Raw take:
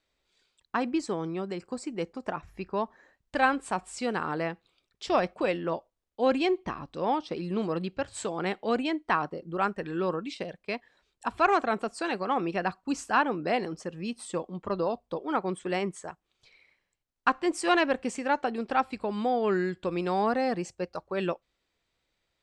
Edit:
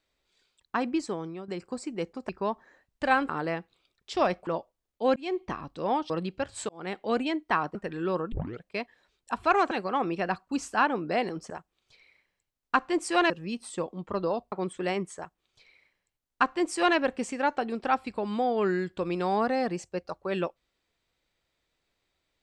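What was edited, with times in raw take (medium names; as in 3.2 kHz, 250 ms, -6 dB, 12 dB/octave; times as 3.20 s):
1.00–1.48 s: fade out linear, to -9.5 dB
2.29–2.61 s: delete
3.61–4.22 s: delete
5.40–5.65 s: delete
6.34–6.61 s: fade in
7.28–7.69 s: delete
8.28–8.77 s: fade in equal-power
9.34–9.69 s: delete
10.26 s: tape start 0.30 s
11.65–12.07 s: delete
15.08–15.38 s: delete
16.03–17.83 s: copy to 13.86 s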